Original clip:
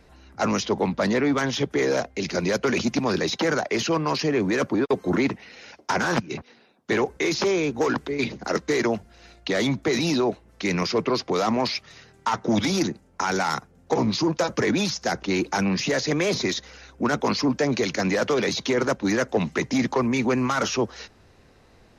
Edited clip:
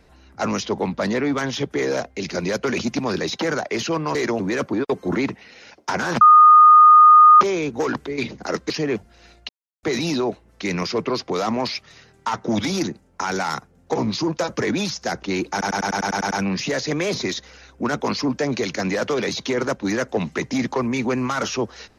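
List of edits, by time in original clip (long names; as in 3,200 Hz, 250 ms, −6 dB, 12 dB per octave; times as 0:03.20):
0:04.15–0:04.41: swap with 0:08.71–0:08.96
0:06.22–0:07.42: beep over 1,230 Hz −6 dBFS
0:09.49–0:09.83: silence
0:15.51: stutter 0.10 s, 9 plays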